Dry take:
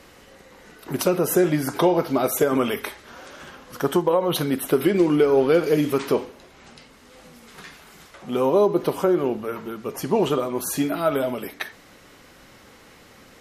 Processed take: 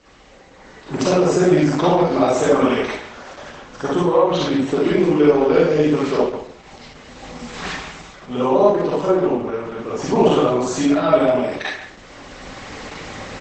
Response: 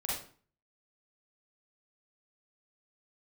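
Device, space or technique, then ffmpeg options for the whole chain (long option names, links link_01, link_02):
speakerphone in a meeting room: -filter_complex "[1:a]atrim=start_sample=2205[link_01];[0:a][link_01]afir=irnorm=-1:irlink=0,asplit=2[link_02][link_03];[link_03]adelay=140,highpass=300,lowpass=3400,asoftclip=type=hard:threshold=-12dB,volume=-9dB[link_04];[link_02][link_04]amix=inputs=2:normalize=0,dynaudnorm=framelen=480:gausssize=3:maxgain=15.5dB,volume=-1.5dB" -ar 48000 -c:a libopus -b:a 12k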